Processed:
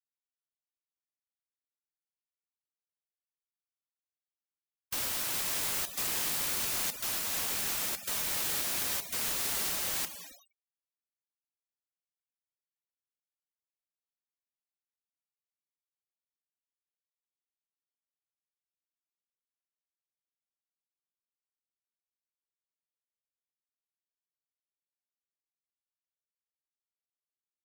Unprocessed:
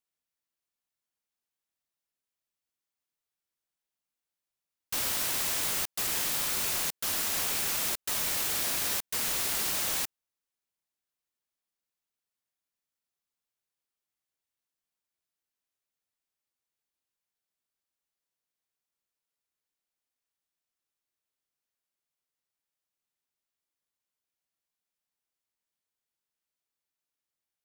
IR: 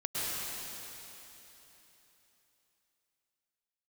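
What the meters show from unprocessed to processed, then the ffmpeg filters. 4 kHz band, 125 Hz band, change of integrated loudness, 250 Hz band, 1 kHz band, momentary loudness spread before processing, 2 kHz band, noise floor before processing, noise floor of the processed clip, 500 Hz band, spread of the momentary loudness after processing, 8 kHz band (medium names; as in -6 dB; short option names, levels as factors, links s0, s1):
-2.5 dB, -2.5 dB, -2.5 dB, -2.5 dB, -2.5 dB, 2 LU, -2.5 dB, under -85 dBFS, under -85 dBFS, -2.5 dB, 3 LU, -2.5 dB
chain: -filter_complex "[0:a]alimiter=limit=0.0794:level=0:latency=1:release=478,asplit=2[s0][s1];[1:a]atrim=start_sample=2205,asetrate=66150,aresample=44100,adelay=110[s2];[s1][s2]afir=irnorm=-1:irlink=0,volume=0.282[s3];[s0][s3]amix=inputs=2:normalize=0,afftdn=nr=14:nf=-50,afftfilt=real='re*gte(hypot(re,im),0.00562)':imag='im*gte(hypot(re,im),0.00562)':win_size=1024:overlap=0.75"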